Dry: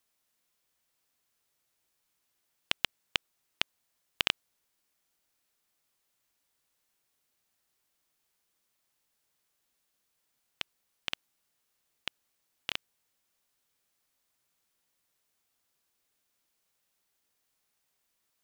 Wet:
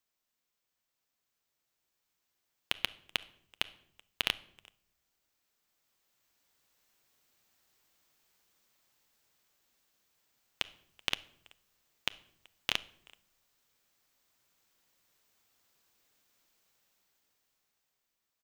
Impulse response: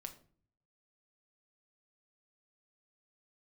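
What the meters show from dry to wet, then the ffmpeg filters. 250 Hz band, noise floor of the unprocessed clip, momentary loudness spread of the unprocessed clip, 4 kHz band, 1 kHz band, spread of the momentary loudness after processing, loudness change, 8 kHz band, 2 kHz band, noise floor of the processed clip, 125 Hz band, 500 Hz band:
−0.5 dB, −79 dBFS, 12 LU, −0.5 dB, −1.0 dB, 6 LU, −0.5 dB, 0.0 dB, −0.5 dB, −85 dBFS, 0.0 dB, −0.5 dB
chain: -filter_complex "[0:a]dynaudnorm=framelen=500:gausssize=7:maxgain=12.5dB,equalizer=frequency=10000:width=5.5:gain=-13.5,asplit=2[link_01][link_02];[link_02]adelay=380,highpass=300,lowpass=3400,asoftclip=type=hard:threshold=-10.5dB,volume=-24dB[link_03];[link_01][link_03]amix=inputs=2:normalize=0,acrusher=bits=3:mode=log:mix=0:aa=0.000001,asplit=2[link_04][link_05];[1:a]atrim=start_sample=2205,asetrate=25578,aresample=44100[link_06];[link_05][link_06]afir=irnorm=-1:irlink=0,volume=-7dB[link_07];[link_04][link_07]amix=inputs=2:normalize=0,volume=-8.5dB"

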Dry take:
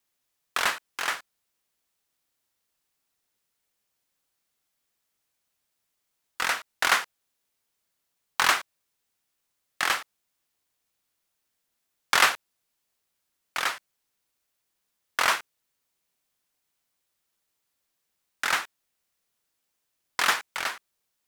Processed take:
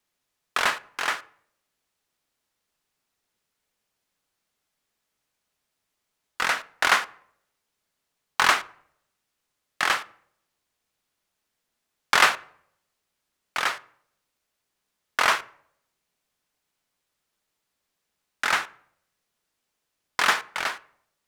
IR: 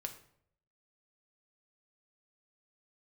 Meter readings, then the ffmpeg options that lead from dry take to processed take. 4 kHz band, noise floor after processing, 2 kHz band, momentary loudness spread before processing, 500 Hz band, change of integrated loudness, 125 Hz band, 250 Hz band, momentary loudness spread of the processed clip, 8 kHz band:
+1.0 dB, −81 dBFS, +2.5 dB, 13 LU, +3.5 dB, +2.0 dB, can't be measured, +3.5 dB, 13 LU, −1.0 dB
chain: -filter_complex "[0:a]highshelf=frequency=11000:gain=-8,asplit=2[link_01][link_02];[1:a]atrim=start_sample=2205,highshelf=frequency=3900:gain=-12[link_03];[link_02][link_03]afir=irnorm=-1:irlink=0,volume=-3.5dB[link_04];[link_01][link_04]amix=inputs=2:normalize=0"

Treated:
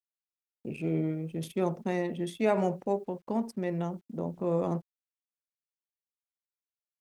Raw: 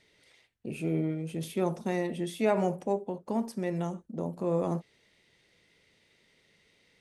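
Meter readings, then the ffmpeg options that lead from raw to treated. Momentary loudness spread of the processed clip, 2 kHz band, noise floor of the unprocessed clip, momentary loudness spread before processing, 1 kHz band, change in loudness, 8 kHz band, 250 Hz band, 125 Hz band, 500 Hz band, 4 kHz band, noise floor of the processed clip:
8 LU, −0.5 dB, −68 dBFS, 8 LU, 0.0 dB, 0.0 dB, −3.5 dB, 0.0 dB, 0.0 dB, 0.0 dB, −2.0 dB, below −85 dBFS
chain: -af "anlmdn=0.158,acrusher=bits=11:mix=0:aa=0.000001"

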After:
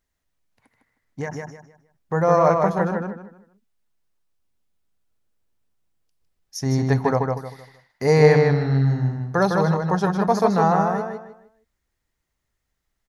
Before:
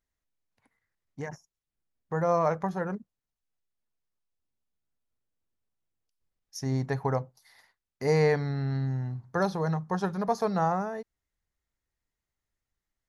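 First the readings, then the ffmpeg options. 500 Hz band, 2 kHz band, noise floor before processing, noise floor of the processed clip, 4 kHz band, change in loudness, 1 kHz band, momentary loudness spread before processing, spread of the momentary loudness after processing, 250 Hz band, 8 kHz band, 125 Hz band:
+9.5 dB, +9.0 dB, below −85 dBFS, −78 dBFS, +8.5 dB, +9.0 dB, +9.0 dB, 15 LU, 17 LU, +9.5 dB, +8.5 dB, +9.5 dB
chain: -filter_complex "[0:a]asplit=2[link_01][link_02];[link_02]adelay=155,lowpass=frequency=5000:poles=1,volume=-3.5dB,asplit=2[link_03][link_04];[link_04]adelay=155,lowpass=frequency=5000:poles=1,volume=0.3,asplit=2[link_05][link_06];[link_06]adelay=155,lowpass=frequency=5000:poles=1,volume=0.3,asplit=2[link_07][link_08];[link_08]adelay=155,lowpass=frequency=5000:poles=1,volume=0.3[link_09];[link_01][link_03][link_05][link_07][link_09]amix=inputs=5:normalize=0,volume=7.5dB"

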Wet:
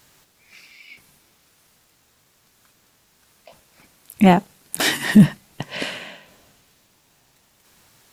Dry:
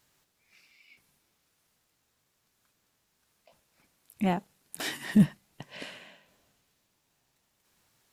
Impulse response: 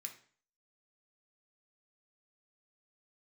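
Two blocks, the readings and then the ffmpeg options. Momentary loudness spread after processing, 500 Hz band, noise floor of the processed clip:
20 LU, +14.0 dB, −61 dBFS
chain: -af "alimiter=level_in=15.5dB:limit=-1dB:release=50:level=0:latency=1,volume=-1dB"

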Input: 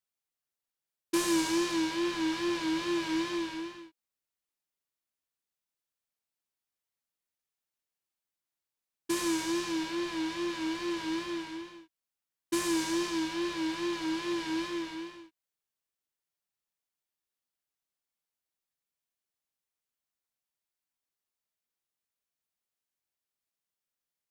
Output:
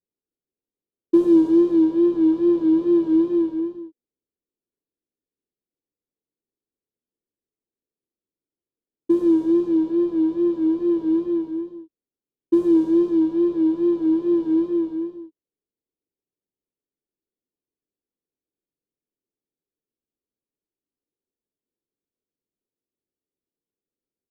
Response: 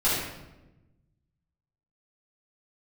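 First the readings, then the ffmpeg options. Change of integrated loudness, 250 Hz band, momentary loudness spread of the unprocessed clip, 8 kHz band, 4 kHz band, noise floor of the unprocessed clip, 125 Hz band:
+12.5 dB, +14.0 dB, 11 LU, below −20 dB, below −15 dB, below −85 dBFS, can't be measured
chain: -filter_complex "[0:a]firequalizer=gain_entry='entry(120,0);entry(290,10);entry(430,10);entry(660,-4);entry(1300,-13);entry(2000,-28);entry(3300,-15);entry(5300,-21);entry(9000,-21);entry(15000,-16)':delay=0.05:min_phase=1,asplit=2[link_01][link_02];[link_02]adynamicsmooth=sensitivity=6:basefreq=810,volume=-1.5dB[link_03];[link_01][link_03]amix=inputs=2:normalize=0,volume=-1dB"

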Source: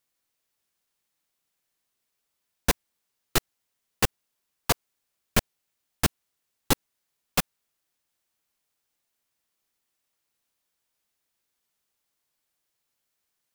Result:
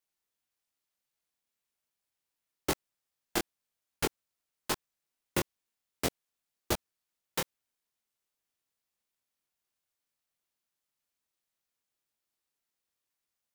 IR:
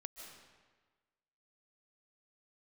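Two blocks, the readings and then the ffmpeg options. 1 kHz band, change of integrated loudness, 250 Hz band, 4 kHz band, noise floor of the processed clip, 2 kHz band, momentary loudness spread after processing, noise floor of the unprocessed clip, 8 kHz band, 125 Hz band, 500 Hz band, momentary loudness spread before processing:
−7.0 dB, −7.5 dB, −5.5 dB, −7.5 dB, below −85 dBFS, −7.5 dB, 5 LU, −80 dBFS, −7.5 dB, −10.5 dB, −4.0 dB, 2 LU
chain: -af "flanger=delay=19.5:depth=6.3:speed=2.5,aeval=exprs='val(0)*sin(2*PI*350*n/s)':channel_layout=same,volume=-1.5dB"

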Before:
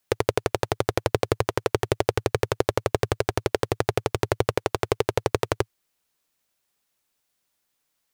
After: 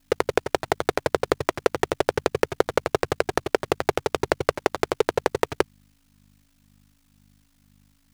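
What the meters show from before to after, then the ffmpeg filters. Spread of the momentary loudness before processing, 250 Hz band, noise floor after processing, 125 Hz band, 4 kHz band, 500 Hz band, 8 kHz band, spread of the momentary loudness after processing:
2 LU, +0.5 dB, −65 dBFS, −7.0 dB, 0.0 dB, +1.0 dB, −1.0 dB, 2 LU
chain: -filter_complex "[0:a]aeval=exprs='val(0)+0.002*(sin(2*PI*50*n/s)+sin(2*PI*2*50*n/s)/2+sin(2*PI*3*50*n/s)/3+sin(2*PI*4*50*n/s)/4+sin(2*PI*5*50*n/s)/5)':channel_layout=same,asplit=2[link_01][link_02];[link_02]highpass=frequency=720:poles=1,volume=18dB,asoftclip=type=tanh:threshold=-2dB[link_03];[link_01][link_03]amix=inputs=2:normalize=0,lowpass=frequency=7800:poles=1,volume=-6dB,aeval=exprs='val(0)*sin(2*PI*26*n/s)':channel_layout=same"

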